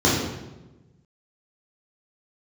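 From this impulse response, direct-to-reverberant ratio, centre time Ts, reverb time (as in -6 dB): -6.5 dB, 68 ms, 1.1 s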